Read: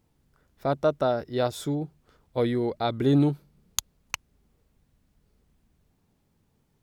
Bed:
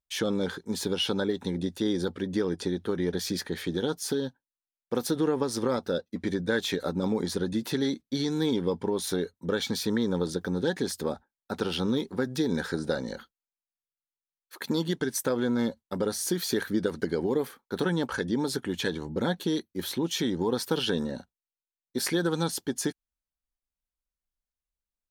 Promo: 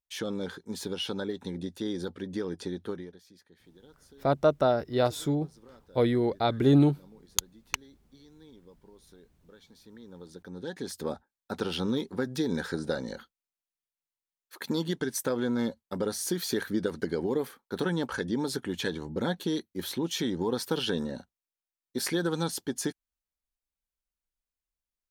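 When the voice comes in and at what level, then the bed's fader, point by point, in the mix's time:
3.60 s, +0.5 dB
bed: 0:02.92 −5.5 dB
0:03.22 −27 dB
0:09.75 −27 dB
0:11.12 −2 dB

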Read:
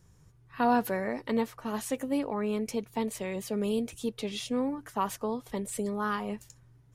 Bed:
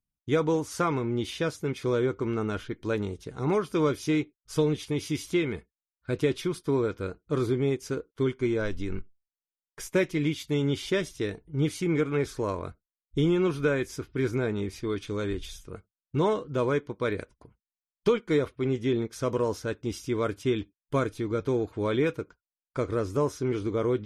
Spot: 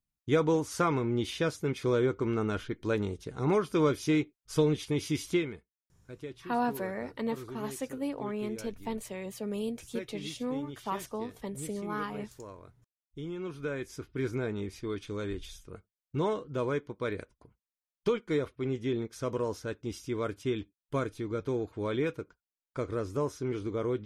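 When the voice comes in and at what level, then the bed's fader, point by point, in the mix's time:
5.90 s, −4.5 dB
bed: 0:05.34 −1 dB
0:05.67 −16.5 dB
0:13.16 −16.5 dB
0:14.05 −5 dB

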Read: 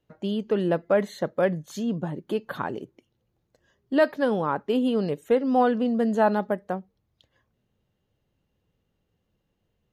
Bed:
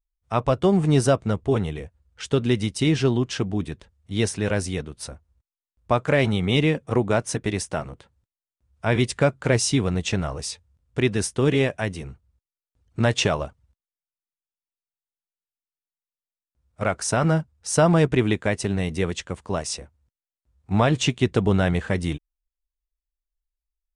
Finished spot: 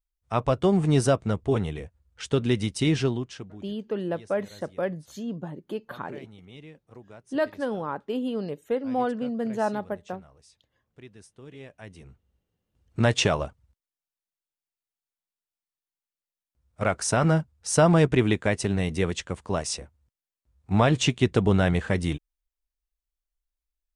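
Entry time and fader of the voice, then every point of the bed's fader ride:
3.40 s, −5.5 dB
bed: 0:03.00 −2.5 dB
0:03.81 −26 dB
0:11.50 −26 dB
0:12.51 −1 dB

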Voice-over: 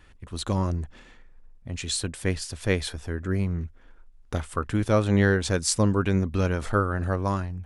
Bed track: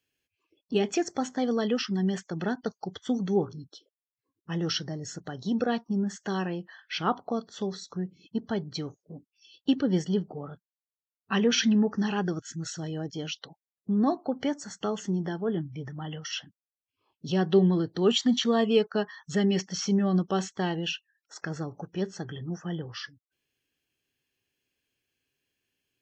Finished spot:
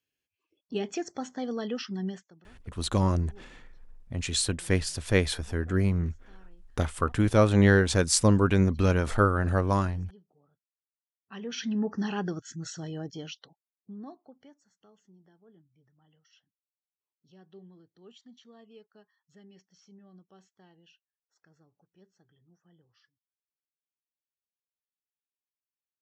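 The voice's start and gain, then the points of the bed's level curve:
2.45 s, +1.0 dB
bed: 0:02.08 −6 dB
0:02.44 −29 dB
0:10.86 −29 dB
0:11.90 −3 dB
0:13.09 −3 dB
0:14.72 −30 dB

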